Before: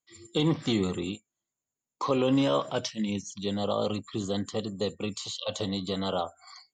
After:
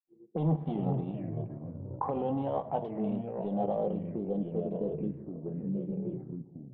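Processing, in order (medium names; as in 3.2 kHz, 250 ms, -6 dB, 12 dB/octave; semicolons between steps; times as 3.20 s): fade out at the end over 1.45 s; resonant low shelf 120 Hz -11.5 dB, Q 3; on a send at -11.5 dB: reverberation RT60 1.4 s, pre-delay 3 ms; on the sum: peak limiter -17.5 dBFS, peak gain reduction 6 dB; graphic EQ with 31 bands 160 Hz +8 dB, 800 Hz +10 dB, 1.25 kHz -4 dB; in parallel at -1 dB: compression, threshold -37 dBFS, peak gain reduction 20 dB; on the sum: power-law waveshaper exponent 1.4; low-pass sweep 750 Hz -> 160 Hz, 3.33–6.55 s; ever faster or slower copies 341 ms, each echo -3 st, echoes 3, each echo -6 dB; touch-sensitive low-pass 400–3200 Hz up, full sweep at -22 dBFS; trim -8.5 dB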